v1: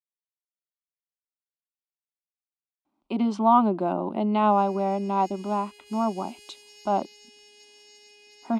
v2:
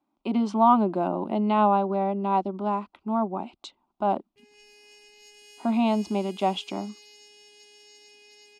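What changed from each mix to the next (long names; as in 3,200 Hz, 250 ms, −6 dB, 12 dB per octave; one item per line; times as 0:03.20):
speech: entry −2.85 s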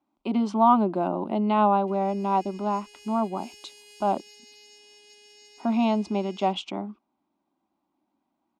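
background: entry −2.50 s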